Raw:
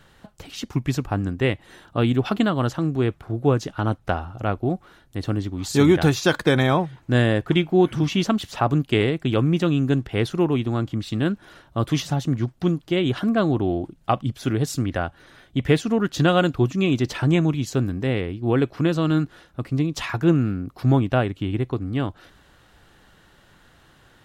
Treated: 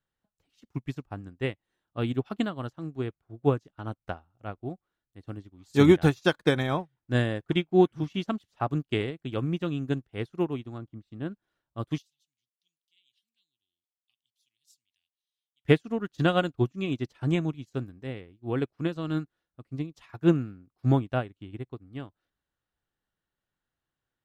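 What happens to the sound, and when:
10.78–11.32 s: treble shelf 2 kHz -10 dB
11.98–15.65 s: inverse Chebyshev high-pass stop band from 1.5 kHz
whole clip: upward expansion 2.5:1, over -35 dBFS

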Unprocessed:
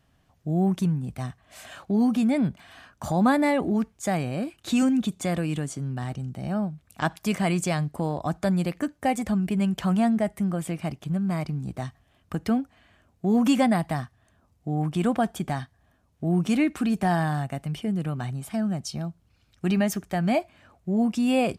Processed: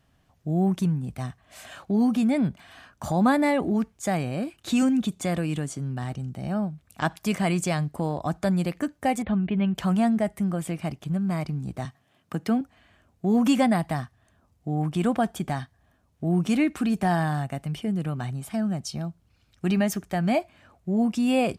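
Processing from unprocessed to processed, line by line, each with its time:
9.22–9.75 s: steep low-pass 3.9 kHz 72 dB/octave
11.85–12.61 s: high-pass 120 Hz 24 dB/octave

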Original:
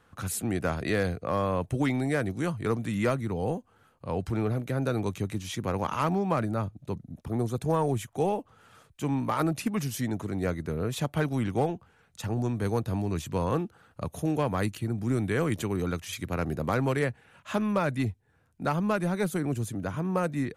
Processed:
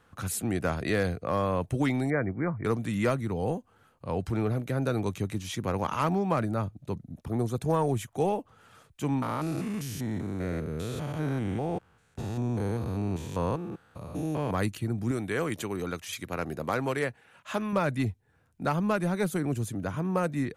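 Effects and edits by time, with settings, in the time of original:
2.10–2.65 s: brick-wall FIR low-pass 2.4 kHz
9.22–14.51 s: spectrogram pixelated in time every 200 ms
15.11–17.73 s: bass shelf 200 Hz -10 dB

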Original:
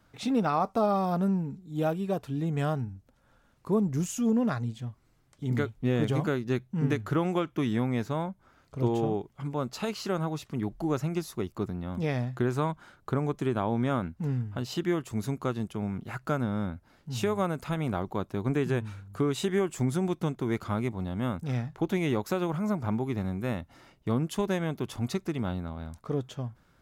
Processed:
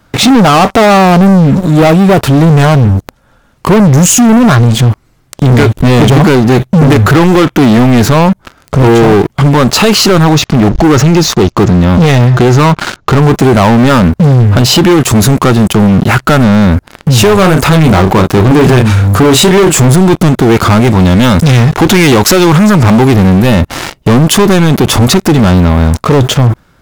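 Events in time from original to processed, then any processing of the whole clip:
10.24–13.22 s: elliptic low-pass 6.7 kHz
17.35–19.94 s: doubling 32 ms -9 dB
20.87–23.14 s: peaking EQ 5 kHz +7.5 dB 2.9 oct
whole clip: waveshaping leveller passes 5; loudness maximiser +27.5 dB; trim -1 dB

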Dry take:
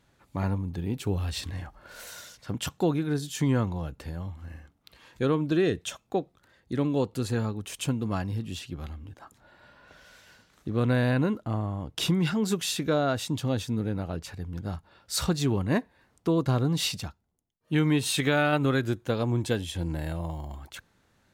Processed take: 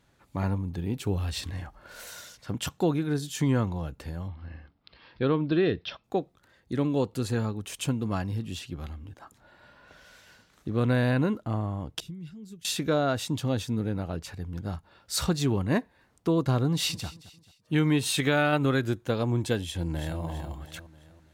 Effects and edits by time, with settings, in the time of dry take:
4.28–6.04 s: steep low-pass 5.3 kHz 96 dB/octave
12.00–12.65 s: amplifier tone stack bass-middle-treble 10-0-1
16.67–17.07 s: echo throw 220 ms, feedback 40%, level -17.5 dB
19.62–20.20 s: echo throw 330 ms, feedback 45%, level -8.5 dB

